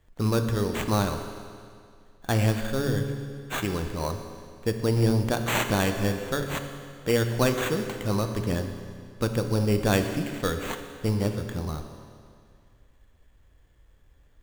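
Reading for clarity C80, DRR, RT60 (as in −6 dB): 8.5 dB, 6.0 dB, 2.2 s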